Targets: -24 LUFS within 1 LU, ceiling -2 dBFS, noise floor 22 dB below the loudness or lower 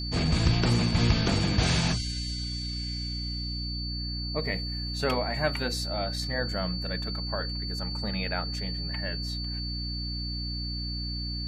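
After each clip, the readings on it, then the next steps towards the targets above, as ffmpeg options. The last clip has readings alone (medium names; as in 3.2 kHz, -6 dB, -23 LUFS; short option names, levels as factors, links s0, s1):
hum 60 Hz; highest harmonic 300 Hz; hum level -32 dBFS; steady tone 4.5 kHz; tone level -35 dBFS; loudness -29.5 LUFS; peak level -10.5 dBFS; loudness target -24.0 LUFS
-> -af "bandreject=f=60:t=h:w=4,bandreject=f=120:t=h:w=4,bandreject=f=180:t=h:w=4,bandreject=f=240:t=h:w=4,bandreject=f=300:t=h:w=4"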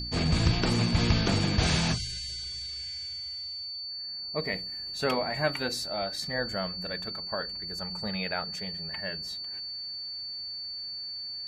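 hum not found; steady tone 4.5 kHz; tone level -35 dBFS
-> -af "bandreject=f=4500:w=30"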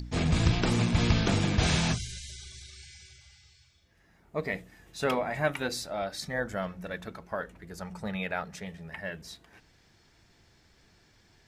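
steady tone not found; loudness -30.5 LUFS; peak level -12.0 dBFS; loudness target -24.0 LUFS
-> -af "volume=2.11"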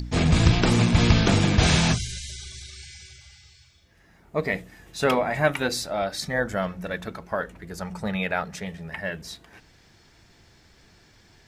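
loudness -24.0 LUFS; peak level -5.5 dBFS; noise floor -57 dBFS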